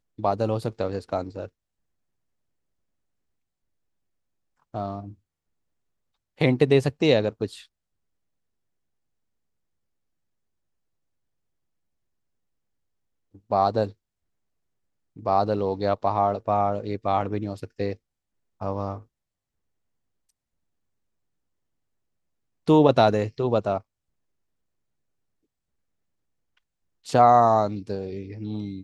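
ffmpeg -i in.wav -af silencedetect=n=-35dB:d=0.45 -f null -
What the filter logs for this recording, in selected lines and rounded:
silence_start: 1.47
silence_end: 4.74 | silence_duration: 3.28
silence_start: 5.10
silence_end: 6.40 | silence_duration: 1.31
silence_start: 7.58
silence_end: 13.51 | silence_duration: 5.93
silence_start: 13.90
silence_end: 15.17 | silence_duration: 1.28
silence_start: 17.93
silence_end: 18.61 | silence_duration: 0.68
silence_start: 18.98
silence_end: 22.68 | silence_duration: 3.69
silence_start: 23.78
silence_end: 27.07 | silence_duration: 3.28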